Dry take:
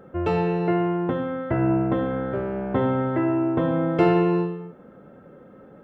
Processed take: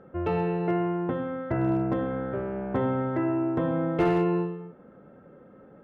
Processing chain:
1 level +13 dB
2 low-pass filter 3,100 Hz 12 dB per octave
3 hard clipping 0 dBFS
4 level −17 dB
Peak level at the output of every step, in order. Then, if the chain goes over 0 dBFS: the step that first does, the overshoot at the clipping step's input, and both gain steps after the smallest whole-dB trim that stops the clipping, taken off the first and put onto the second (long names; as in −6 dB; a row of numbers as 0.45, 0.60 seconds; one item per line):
+5.5, +5.5, 0.0, −17.0 dBFS
step 1, 5.5 dB
step 1 +7 dB, step 4 −11 dB